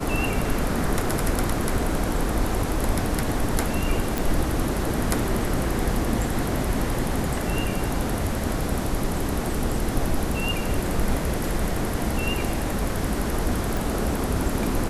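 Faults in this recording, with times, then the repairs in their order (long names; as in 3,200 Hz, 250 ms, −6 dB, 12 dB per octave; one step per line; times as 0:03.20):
0:04.18: click
0:13.77: click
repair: click removal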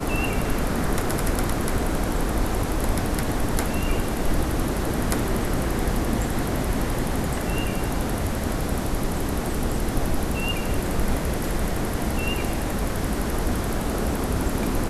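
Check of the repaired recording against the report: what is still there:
none of them is left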